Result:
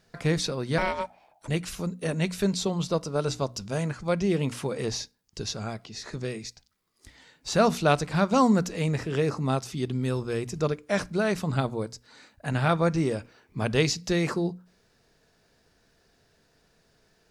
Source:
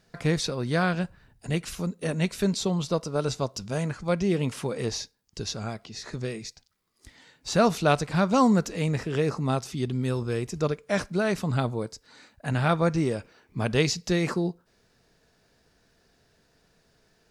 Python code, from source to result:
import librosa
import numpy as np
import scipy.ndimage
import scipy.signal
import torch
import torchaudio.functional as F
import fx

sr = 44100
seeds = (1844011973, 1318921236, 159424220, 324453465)

y = fx.ring_mod(x, sr, carrier_hz=750.0, at=(0.78, 1.48))
y = fx.hum_notches(y, sr, base_hz=60, count=5)